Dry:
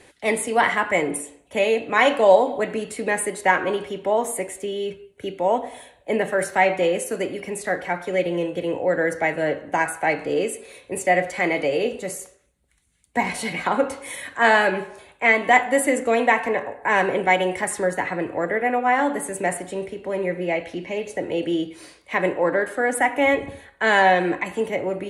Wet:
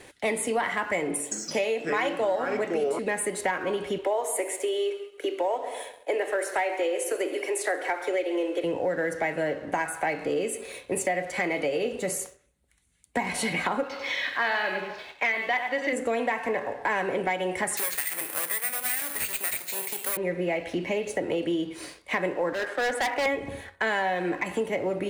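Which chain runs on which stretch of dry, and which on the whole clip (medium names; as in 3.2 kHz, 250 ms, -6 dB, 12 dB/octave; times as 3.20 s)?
1.15–2.99 s: high-pass 250 Hz + ever faster or slower copies 163 ms, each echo -5 st, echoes 2, each echo -6 dB
3.98–8.64 s: steep high-pass 290 Hz 72 dB/octave + multi-head delay 67 ms, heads first and second, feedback 42%, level -19 dB
13.83–15.93 s: steep low-pass 5.3 kHz 48 dB/octave + tilt EQ +3 dB/octave + delay 95 ms -9 dB
17.77–20.17 s: comb filter that takes the minimum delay 0.45 ms + frequency weighting ITU-R 468 + careless resampling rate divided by 4×, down none, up zero stuff
22.53–23.26 s: companding laws mixed up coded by A + band-pass 420–4700 Hz + hard clipper -25 dBFS
whole clip: de-hum 45.54 Hz, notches 3; compression 6:1, threshold -28 dBFS; waveshaping leveller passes 1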